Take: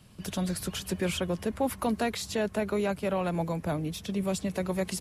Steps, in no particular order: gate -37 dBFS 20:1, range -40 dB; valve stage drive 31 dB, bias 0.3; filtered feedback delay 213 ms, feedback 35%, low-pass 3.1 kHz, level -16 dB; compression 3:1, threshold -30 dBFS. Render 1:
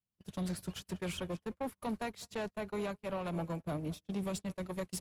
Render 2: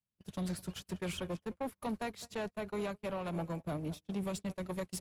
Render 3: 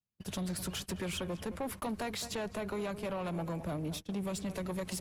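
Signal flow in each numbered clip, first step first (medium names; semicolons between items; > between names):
compression > valve stage > filtered feedback delay > gate; filtered feedback delay > compression > valve stage > gate; filtered feedback delay > gate > compression > valve stage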